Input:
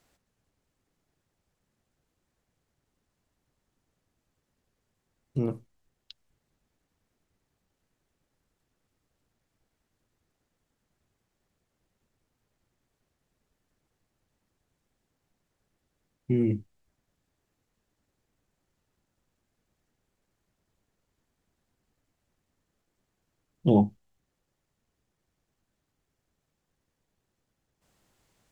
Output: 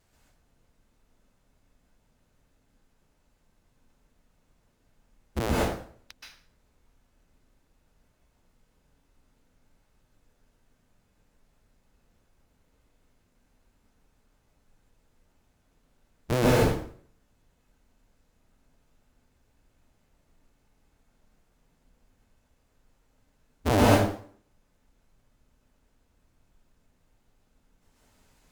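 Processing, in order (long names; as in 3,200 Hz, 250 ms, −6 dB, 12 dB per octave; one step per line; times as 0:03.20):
sub-harmonics by changed cycles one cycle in 2, inverted
pitch vibrato 6 Hz 96 cents
background noise brown −70 dBFS
tube saturation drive 19 dB, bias 0.55
dense smooth reverb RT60 0.53 s, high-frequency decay 0.85×, pre-delay 115 ms, DRR −5.5 dB
level +1.5 dB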